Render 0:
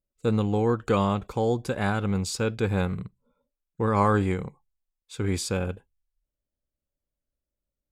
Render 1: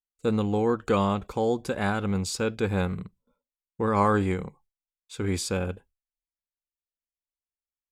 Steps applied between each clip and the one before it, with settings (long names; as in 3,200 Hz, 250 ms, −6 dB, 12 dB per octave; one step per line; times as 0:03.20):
noise gate with hold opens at −59 dBFS
parametric band 120 Hz −9 dB 0.3 octaves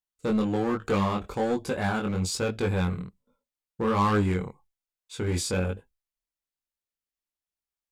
in parallel at −4.5 dB: wave folding −23.5 dBFS
on the sum: chorus effect 1.2 Hz, delay 19.5 ms, depth 3.9 ms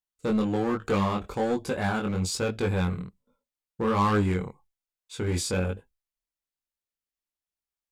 no processing that can be heard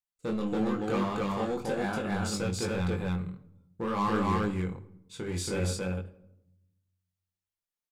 mains-hum notches 50/100 Hz
loudspeakers that aren't time-aligned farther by 12 metres −11 dB, 96 metres −1 dB
rectangular room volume 2,700 cubic metres, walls furnished, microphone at 0.79 metres
level −6 dB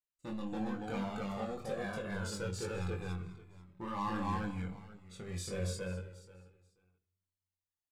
repeating echo 484 ms, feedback 17%, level −17 dB
flanger whose copies keep moving one way falling 0.27 Hz
level −3.5 dB